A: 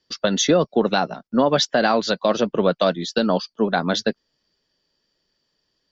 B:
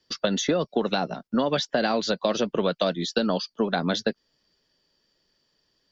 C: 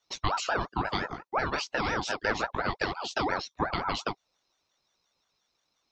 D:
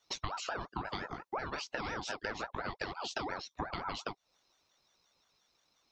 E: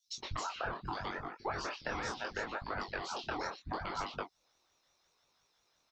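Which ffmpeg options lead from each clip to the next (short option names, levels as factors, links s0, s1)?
-filter_complex "[0:a]acrossover=split=700|1800[s0][s1][s2];[s0]acompressor=threshold=0.0631:ratio=4[s3];[s1]acompressor=threshold=0.0158:ratio=4[s4];[s2]acompressor=threshold=0.0282:ratio=4[s5];[s3][s4][s5]amix=inputs=3:normalize=0,volume=1.19"
-af "flanger=delay=17:depth=5.7:speed=0.79,aeval=exprs='val(0)*sin(2*PI*840*n/s+840*0.4/5.7*sin(2*PI*5.7*n/s))':c=same"
-af "acompressor=threshold=0.0126:ratio=6,volume=1.33"
-filter_complex "[0:a]acrossover=split=210|3900[s0][s1][s2];[s0]adelay=70[s3];[s1]adelay=120[s4];[s3][s4][s2]amix=inputs=3:normalize=0,flanger=delay=20:depth=6.2:speed=0.74,volume=1.5"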